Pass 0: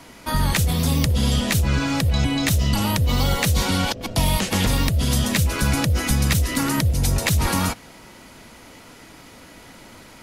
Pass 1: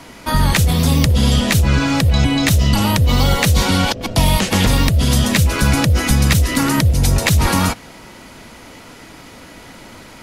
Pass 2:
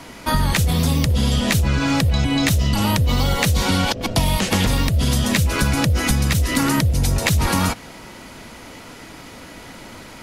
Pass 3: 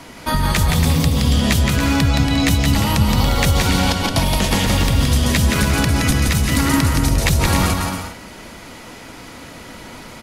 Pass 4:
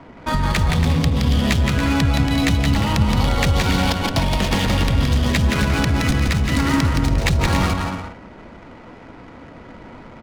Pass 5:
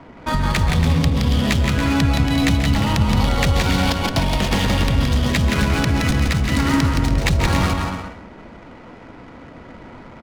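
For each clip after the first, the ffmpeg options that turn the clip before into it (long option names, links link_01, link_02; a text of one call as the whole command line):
ffmpeg -i in.wav -af "highshelf=frequency=8100:gain=-4,volume=6dB" out.wav
ffmpeg -i in.wav -af "acompressor=threshold=-14dB:ratio=6" out.wav
ffmpeg -i in.wav -af "aecho=1:1:170|280.5|352.3|399|429.4:0.631|0.398|0.251|0.158|0.1" out.wav
ffmpeg -i in.wav -af "adynamicsmooth=sensitivity=3:basefreq=1100,volume=-1.5dB" out.wav
ffmpeg -i in.wav -af "aecho=1:1:134:0.224" out.wav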